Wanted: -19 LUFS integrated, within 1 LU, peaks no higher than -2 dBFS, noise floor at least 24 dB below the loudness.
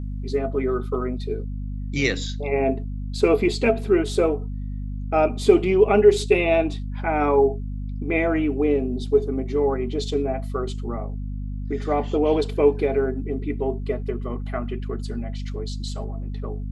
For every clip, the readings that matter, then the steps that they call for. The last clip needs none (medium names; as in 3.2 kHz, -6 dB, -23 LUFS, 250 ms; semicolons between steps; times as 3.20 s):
hum 50 Hz; highest harmonic 250 Hz; hum level -27 dBFS; loudness -23.5 LUFS; peak level -2.5 dBFS; loudness target -19.0 LUFS
-> hum notches 50/100/150/200/250 Hz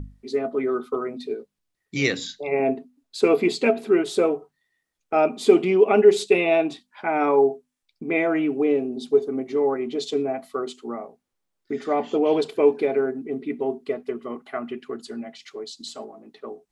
hum not found; loudness -23.0 LUFS; peak level -2.5 dBFS; loudness target -19.0 LUFS
-> trim +4 dB; peak limiter -2 dBFS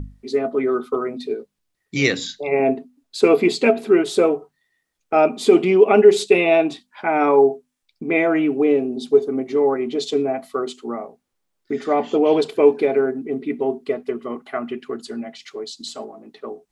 loudness -19.0 LUFS; peak level -2.0 dBFS; noise floor -74 dBFS